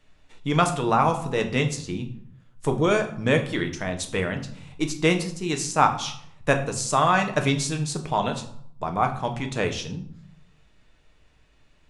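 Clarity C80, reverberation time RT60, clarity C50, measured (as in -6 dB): 14.5 dB, 0.65 s, 11.0 dB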